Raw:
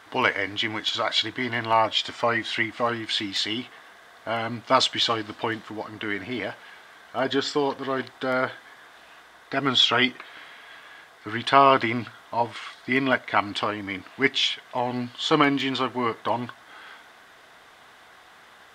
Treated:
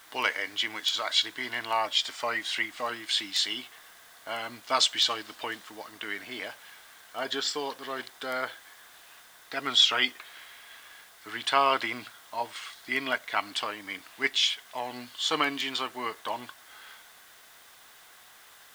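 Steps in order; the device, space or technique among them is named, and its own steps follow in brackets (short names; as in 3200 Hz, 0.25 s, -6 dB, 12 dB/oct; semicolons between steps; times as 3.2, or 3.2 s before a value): turntable without a phono preamp (RIAA curve recording; white noise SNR 27 dB); gain -7 dB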